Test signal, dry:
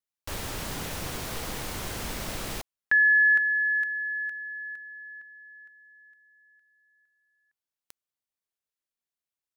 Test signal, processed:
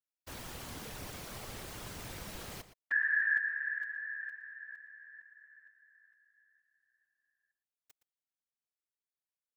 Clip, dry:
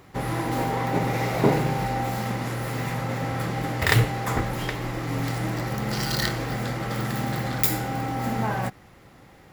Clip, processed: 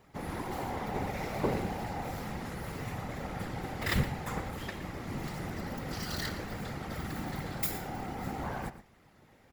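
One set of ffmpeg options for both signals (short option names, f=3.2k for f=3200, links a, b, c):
-filter_complex "[0:a]afftfilt=real='hypot(re,im)*cos(2*PI*random(0))':imag='hypot(re,im)*sin(2*PI*random(1))':win_size=512:overlap=0.75,asplit=2[a][b];[b]adelay=116.6,volume=-13dB,highshelf=f=4k:g=-2.62[c];[a][c]amix=inputs=2:normalize=0,volume=-4.5dB"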